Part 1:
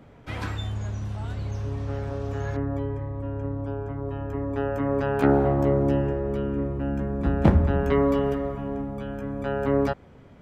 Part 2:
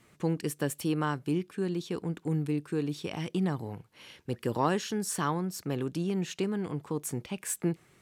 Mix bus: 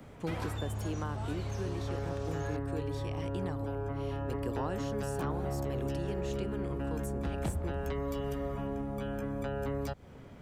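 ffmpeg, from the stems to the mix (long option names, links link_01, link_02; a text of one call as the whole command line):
ffmpeg -i stem1.wav -i stem2.wav -filter_complex "[0:a]highshelf=frequency=6700:gain=9,acrossover=split=140|3000[link_01][link_02][link_03];[link_02]acompressor=threshold=-32dB:ratio=6[link_04];[link_01][link_04][link_03]amix=inputs=3:normalize=0,volume=-0.5dB[link_05];[1:a]volume=-5.5dB[link_06];[link_05][link_06]amix=inputs=2:normalize=0,acrossover=split=370|1100[link_07][link_08][link_09];[link_07]acompressor=threshold=-35dB:ratio=4[link_10];[link_08]acompressor=threshold=-35dB:ratio=4[link_11];[link_09]acompressor=threshold=-47dB:ratio=4[link_12];[link_10][link_11][link_12]amix=inputs=3:normalize=0" out.wav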